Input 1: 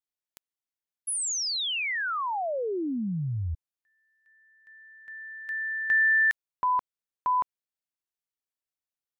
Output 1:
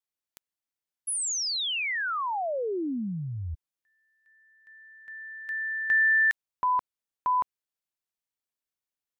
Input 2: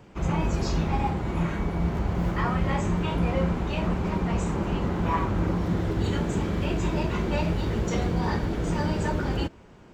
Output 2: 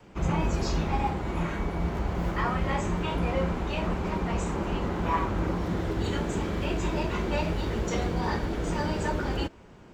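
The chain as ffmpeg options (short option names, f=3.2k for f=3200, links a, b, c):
-af "adynamicequalizer=threshold=0.0126:dfrequency=130:dqfactor=0.8:tfrequency=130:tqfactor=0.8:attack=5:release=100:ratio=0.375:range=3:mode=cutabove:tftype=bell"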